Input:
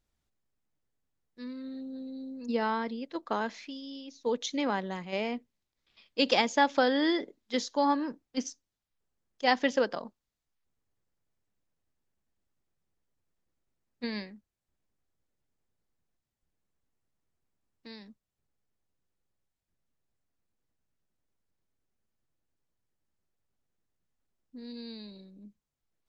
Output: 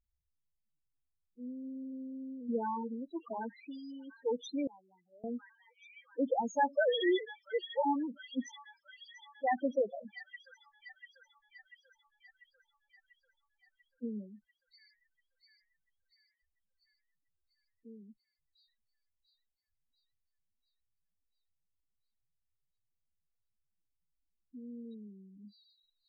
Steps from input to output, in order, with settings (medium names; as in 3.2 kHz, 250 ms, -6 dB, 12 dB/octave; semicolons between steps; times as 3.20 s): 6.75–7.86 s: formants replaced by sine waves; feedback echo behind a high-pass 692 ms, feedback 61%, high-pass 2 kHz, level -9 dB; loudest bins only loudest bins 4; 4.67–5.24 s: differentiator; trim -2.5 dB